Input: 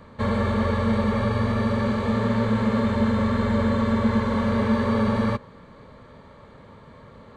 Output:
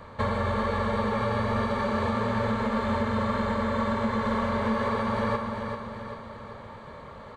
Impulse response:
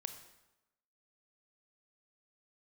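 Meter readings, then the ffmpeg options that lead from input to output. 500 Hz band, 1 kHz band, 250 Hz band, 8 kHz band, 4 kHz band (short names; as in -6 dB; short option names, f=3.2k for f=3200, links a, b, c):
-2.5 dB, +1.0 dB, -7.0 dB, n/a, -2.0 dB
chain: -filter_complex "[0:a]asplit=2[a][b];[b]equalizer=f=830:w=0.63:g=7[c];[1:a]atrim=start_sample=2205[d];[c][d]afir=irnorm=-1:irlink=0,volume=3.5dB[e];[a][e]amix=inputs=2:normalize=0,acompressor=threshold=-17dB:ratio=6,equalizer=f=250:w=0.81:g=-5.5,aecho=1:1:390|780|1170|1560|1950|2340:0.473|0.241|0.123|0.0628|0.032|0.0163,volume=-4.5dB"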